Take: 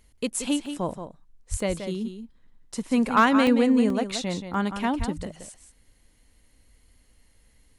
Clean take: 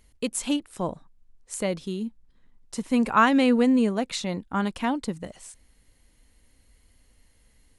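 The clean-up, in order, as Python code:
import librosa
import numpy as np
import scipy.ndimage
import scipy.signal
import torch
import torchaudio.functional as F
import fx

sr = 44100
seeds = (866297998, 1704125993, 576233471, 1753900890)

y = fx.fix_declip(x, sr, threshold_db=-10.0)
y = fx.fix_deplosive(y, sr, at_s=(1.5, 4.98))
y = fx.fix_interpolate(y, sr, at_s=(0.66, 1.6, 3.47, 3.9, 4.54), length_ms=2.1)
y = fx.fix_echo_inverse(y, sr, delay_ms=177, level_db=-9.0)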